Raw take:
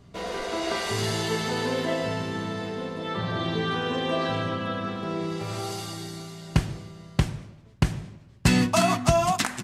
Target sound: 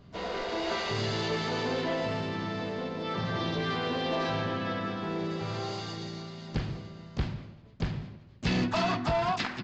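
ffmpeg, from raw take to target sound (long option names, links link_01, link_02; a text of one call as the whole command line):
ffmpeg -i in.wav -filter_complex "[0:a]aresample=11025,asoftclip=type=tanh:threshold=-22dB,aresample=44100,asplit=3[link_01][link_02][link_03];[link_02]asetrate=58866,aresample=44100,atempo=0.749154,volume=-11dB[link_04];[link_03]asetrate=66075,aresample=44100,atempo=0.66742,volume=-15dB[link_05];[link_01][link_04][link_05]amix=inputs=3:normalize=0,volume=-2dB" out.wav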